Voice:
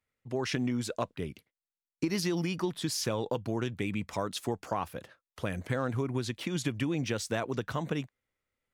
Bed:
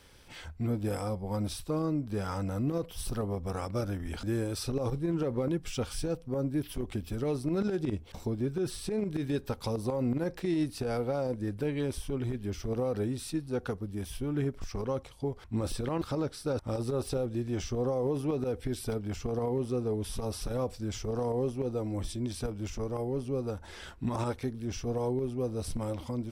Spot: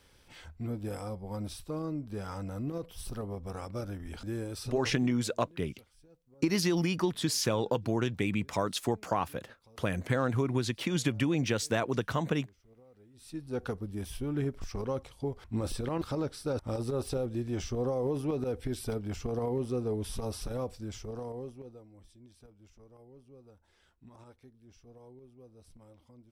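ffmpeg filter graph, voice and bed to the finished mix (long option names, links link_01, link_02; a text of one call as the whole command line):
ffmpeg -i stem1.wav -i stem2.wav -filter_complex "[0:a]adelay=4400,volume=2.5dB[link_01];[1:a]volume=22dB,afade=type=out:start_time=4.6:duration=0.57:silence=0.0707946,afade=type=in:start_time=13.13:duration=0.49:silence=0.0446684,afade=type=out:start_time=20.21:duration=1.66:silence=0.0841395[link_02];[link_01][link_02]amix=inputs=2:normalize=0" out.wav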